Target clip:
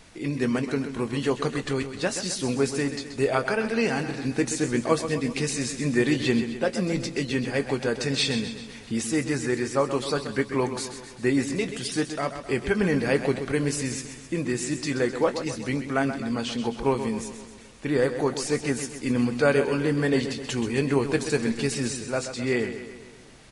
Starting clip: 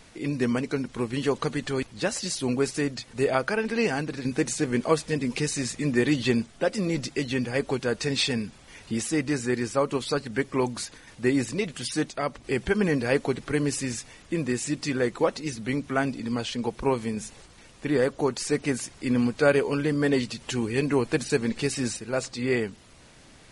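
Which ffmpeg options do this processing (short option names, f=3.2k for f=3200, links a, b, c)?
-filter_complex "[0:a]asplit=2[a][b];[b]adelay=22,volume=-12.5dB[c];[a][c]amix=inputs=2:normalize=0,aecho=1:1:130|260|390|520|650|780:0.316|0.174|0.0957|0.0526|0.0289|0.0159"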